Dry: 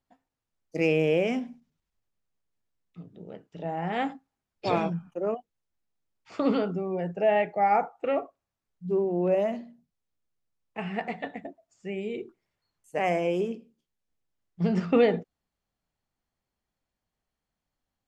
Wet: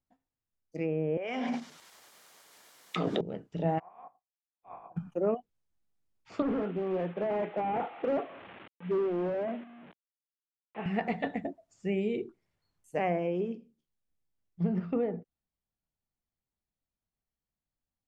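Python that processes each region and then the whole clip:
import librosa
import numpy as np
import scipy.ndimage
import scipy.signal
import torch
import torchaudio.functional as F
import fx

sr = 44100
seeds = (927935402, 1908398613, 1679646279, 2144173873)

y = fx.chain(x, sr, fx.highpass(hz=700.0, slope=12),
    fx.notch(hz=2600.0, q=15.0),
    fx.env_flatten(amount_pct=100), at=(1.17, 3.21))
y = fx.spec_clip(y, sr, under_db=27, at=(3.78, 4.96), fade=0.02)
y = fx.formant_cascade(y, sr, vowel='a', at=(3.78, 4.96), fade=0.02)
y = fx.upward_expand(y, sr, threshold_db=-52.0, expansion=1.5, at=(3.78, 4.96), fade=0.02)
y = fx.chain(y, sr, fx.delta_mod(bps=16000, step_db=-41.5),
    fx.highpass(hz=270.0, slope=12),
    fx.overload_stage(gain_db=26.5), at=(6.42, 10.86))
y = fx.env_lowpass_down(y, sr, base_hz=1300.0, full_db=-19.5)
y = fx.low_shelf(y, sr, hz=340.0, db=7.0)
y = fx.rider(y, sr, range_db=10, speed_s=0.5)
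y = y * librosa.db_to_amplitude(-5.0)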